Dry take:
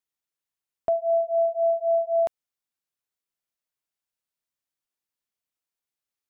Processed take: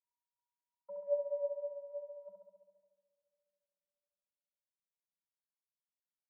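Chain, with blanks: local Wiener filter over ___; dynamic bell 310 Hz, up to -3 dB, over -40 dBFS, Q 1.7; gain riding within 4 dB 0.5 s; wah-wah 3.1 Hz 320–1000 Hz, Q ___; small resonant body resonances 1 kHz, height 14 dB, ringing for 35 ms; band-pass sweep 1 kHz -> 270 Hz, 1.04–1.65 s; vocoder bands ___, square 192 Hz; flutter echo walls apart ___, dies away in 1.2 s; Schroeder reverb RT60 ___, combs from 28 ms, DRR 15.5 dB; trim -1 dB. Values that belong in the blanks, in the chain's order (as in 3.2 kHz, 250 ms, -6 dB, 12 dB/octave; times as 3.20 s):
15 samples, 3.5, 32, 11.8 m, 2.9 s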